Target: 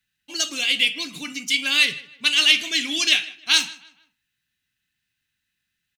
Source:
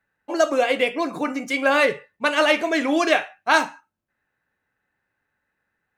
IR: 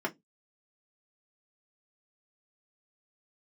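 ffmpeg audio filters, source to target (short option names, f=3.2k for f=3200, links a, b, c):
-filter_complex "[0:a]firequalizer=gain_entry='entry(160,0);entry(540,-22);entry(3000,15);entry(8700,11)':delay=0.05:min_phase=1,asplit=2[a][b];[b]adelay=155,lowpass=f=3.5k:p=1,volume=-19dB,asplit=2[c][d];[d]adelay=155,lowpass=f=3.5k:p=1,volume=0.38,asplit=2[e][f];[f]adelay=155,lowpass=f=3.5k:p=1,volume=0.38[g];[c][e][g]amix=inputs=3:normalize=0[h];[a][h]amix=inputs=2:normalize=0,volume=-2.5dB"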